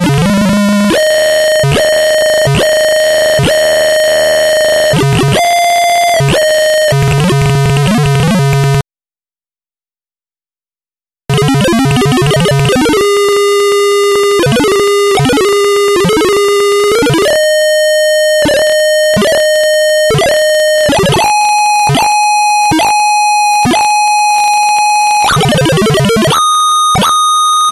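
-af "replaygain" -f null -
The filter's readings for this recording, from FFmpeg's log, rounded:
track_gain = -7.2 dB
track_peak = 0.508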